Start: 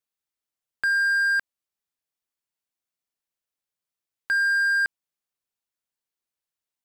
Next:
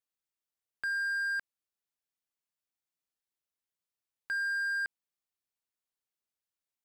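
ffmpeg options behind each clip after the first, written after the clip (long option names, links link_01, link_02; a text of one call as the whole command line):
ffmpeg -i in.wav -af "alimiter=limit=-22dB:level=0:latency=1,volume=-5dB" out.wav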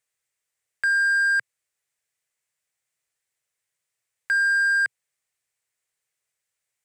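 ffmpeg -i in.wav -af "equalizer=frequency=125:width_type=o:width=1:gain=10,equalizer=frequency=250:width_type=o:width=1:gain=-8,equalizer=frequency=500:width_type=o:width=1:gain=8,equalizer=frequency=2000:width_type=o:width=1:gain=12,equalizer=frequency=8000:width_type=o:width=1:gain=12,volume=2.5dB" out.wav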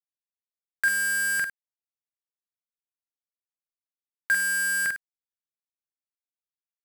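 ffmpeg -i in.wav -filter_complex "[0:a]acrusher=bits=4:mix=0:aa=0.000001,asplit=2[link_01][link_02];[link_02]aecho=0:1:46|102:0.708|0.224[link_03];[link_01][link_03]amix=inputs=2:normalize=0" out.wav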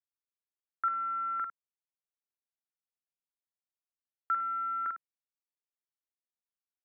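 ffmpeg -i in.wav -af "highpass=frequency=510:width_type=q:width=0.5412,highpass=frequency=510:width_type=q:width=1.307,lowpass=frequency=2200:width_type=q:width=0.5176,lowpass=frequency=2200:width_type=q:width=0.7071,lowpass=frequency=2200:width_type=q:width=1.932,afreqshift=-250,volume=-7dB" out.wav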